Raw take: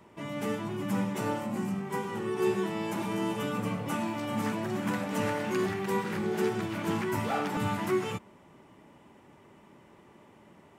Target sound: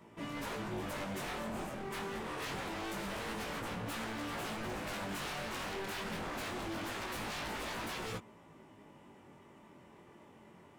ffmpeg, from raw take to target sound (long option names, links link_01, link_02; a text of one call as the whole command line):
ffmpeg -i in.wav -af "aeval=exprs='0.0211*(abs(mod(val(0)/0.0211+3,4)-2)-1)':channel_layout=same,flanger=delay=17.5:depth=5.6:speed=0.25,volume=1dB" out.wav